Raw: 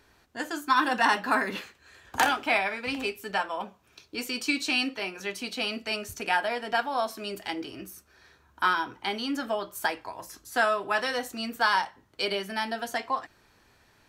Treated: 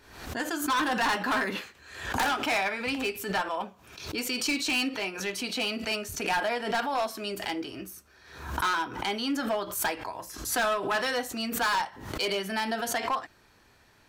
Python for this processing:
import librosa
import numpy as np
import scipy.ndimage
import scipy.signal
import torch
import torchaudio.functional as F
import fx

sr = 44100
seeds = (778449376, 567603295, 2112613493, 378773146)

y = np.clip(10.0 ** (24.0 / 20.0) * x, -1.0, 1.0) / 10.0 ** (24.0 / 20.0)
y = fx.pre_swell(y, sr, db_per_s=74.0)
y = y * 10.0 ** (1.0 / 20.0)